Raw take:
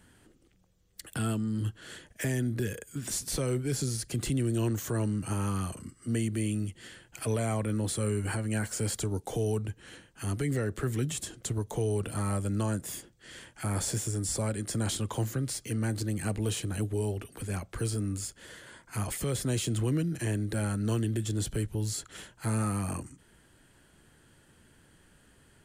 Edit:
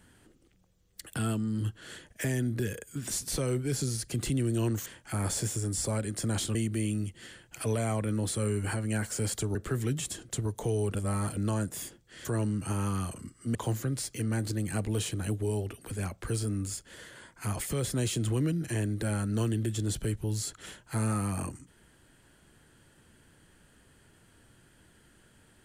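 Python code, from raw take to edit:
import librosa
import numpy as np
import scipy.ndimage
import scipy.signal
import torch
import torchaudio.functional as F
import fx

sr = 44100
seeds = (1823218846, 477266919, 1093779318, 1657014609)

y = fx.edit(x, sr, fx.swap(start_s=4.86, length_s=1.3, other_s=13.37, other_length_s=1.69),
    fx.cut(start_s=9.16, length_s=1.51),
    fx.reverse_span(start_s=12.07, length_s=0.42), tone=tone)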